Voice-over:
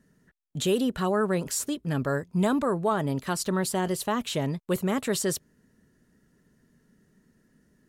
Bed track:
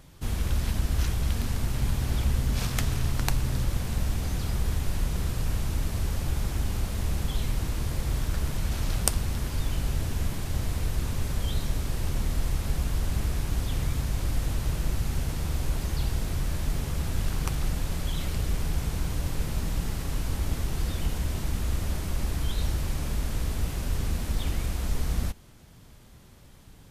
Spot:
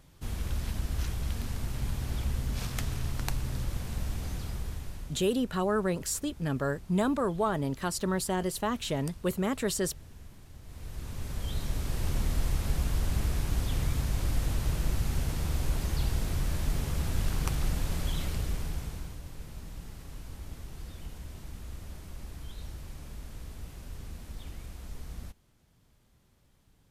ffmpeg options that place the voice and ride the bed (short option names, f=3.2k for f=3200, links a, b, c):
-filter_complex "[0:a]adelay=4550,volume=-3dB[a];[1:a]volume=13dB,afade=t=out:st=4.3:d=0.99:silence=0.188365,afade=t=in:st=10.63:d=1.48:silence=0.112202,afade=t=out:st=18.08:d=1.12:silence=0.237137[b];[a][b]amix=inputs=2:normalize=0"